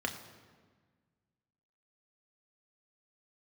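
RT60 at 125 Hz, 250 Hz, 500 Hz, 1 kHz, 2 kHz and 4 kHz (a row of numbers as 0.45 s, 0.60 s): 2.1 s, 2.0 s, 1.6 s, 1.5 s, 1.3 s, 1.1 s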